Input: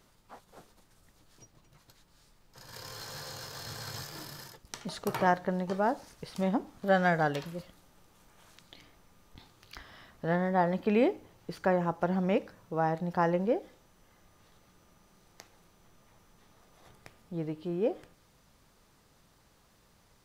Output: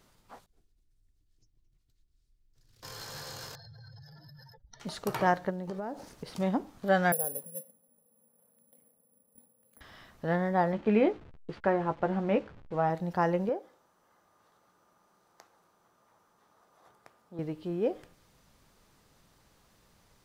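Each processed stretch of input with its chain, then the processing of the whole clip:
0.46–2.83 passive tone stack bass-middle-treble 10-0-1 + comb 2.8 ms, depth 53% + Doppler distortion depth 0.7 ms
3.55–4.8 spectral contrast raised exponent 2.6 + fixed phaser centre 1700 Hz, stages 8 + compressor 3:1, threshold -50 dBFS
5.49–6.39 bell 310 Hz +7 dB 2.6 oct + compressor, threshold -34 dBFS + crackle 470/s -58 dBFS
7.12–9.81 double band-pass 340 Hz, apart 1.1 oct + careless resampling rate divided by 4×, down filtered, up zero stuff
10.72–12.9 level-crossing sampler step -45.5 dBFS + LPF 3100 Hz + doubler 14 ms -8 dB
13.49–17.39 HPF 580 Hz 6 dB/oct + resonant high shelf 1700 Hz -7.5 dB, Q 1.5
whole clip: dry

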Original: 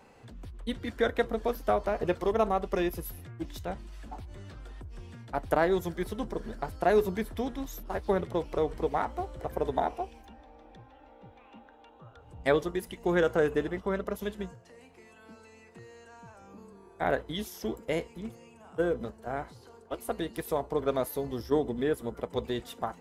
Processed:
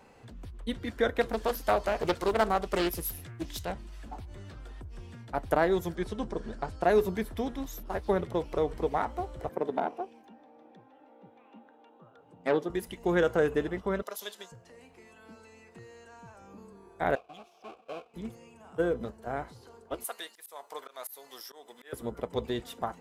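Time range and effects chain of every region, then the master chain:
1.21–3.72 high shelf 2500 Hz +9.5 dB + Doppler distortion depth 0.43 ms
5.95–6.83 LPF 8900 Hz 24 dB/oct + notch 2000 Hz, Q 25
9.49–12.7 tilt -2 dB/oct + tube stage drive 17 dB, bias 0.65 + HPF 180 Hz 24 dB/oct
14.02–14.52 HPF 710 Hz + resonant high shelf 3100 Hz +7 dB, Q 1.5
17.15–18.14 half-waves squared off + vowel filter a + bell 1100 Hz -3 dB 1.7 oct
20.04–21.93 HPF 1000 Hz + high shelf 6000 Hz +11 dB + auto swell 0.243 s
whole clip: dry

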